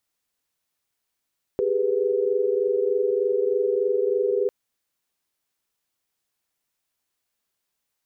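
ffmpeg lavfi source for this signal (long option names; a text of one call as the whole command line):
ffmpeg -f lavfi -i "aevalsrc='0.0631*(sin(2*PI*392*t)+sin(2*PI*415.3*t)+sin(2*PI*493.88*t))':duration=2.9:sample_rate=44100" out.wav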